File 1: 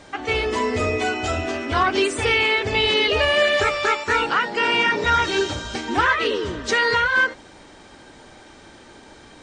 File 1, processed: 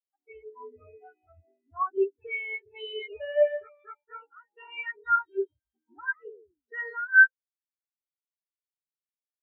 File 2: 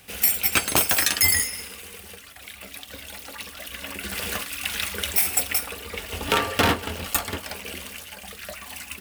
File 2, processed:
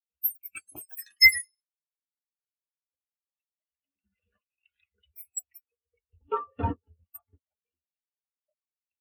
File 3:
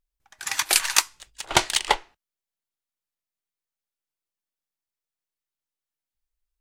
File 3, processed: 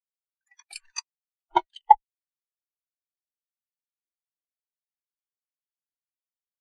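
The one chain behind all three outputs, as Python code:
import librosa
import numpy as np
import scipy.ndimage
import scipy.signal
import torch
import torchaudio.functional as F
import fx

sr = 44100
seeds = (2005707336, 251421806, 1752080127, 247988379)

y = fx.spectral_expand(x, sr, expansion=4.0)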